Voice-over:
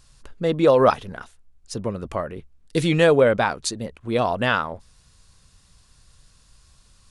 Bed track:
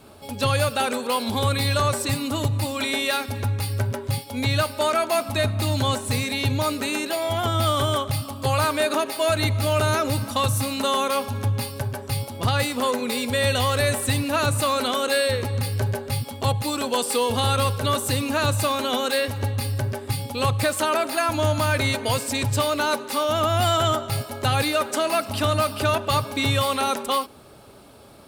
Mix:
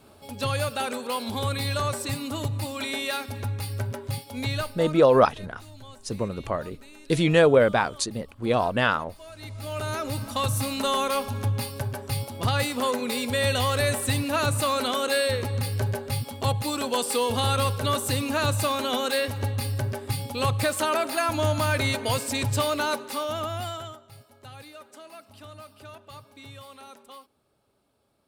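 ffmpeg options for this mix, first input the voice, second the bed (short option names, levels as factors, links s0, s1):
-filter_complex "[0:a]adelay=4350,volume=0.841[s0];[1:a]volume=5.96,afade=t=out:st=4.47:d=0.54:silence=0.125893,afade=t=in:st=9.33:d=1.33:silence=0.0891251,afade=t=out:st=22.71:d=1.26:silence=0.0944061[s1];[s0][s1]amix=inputs=2:normalize=0"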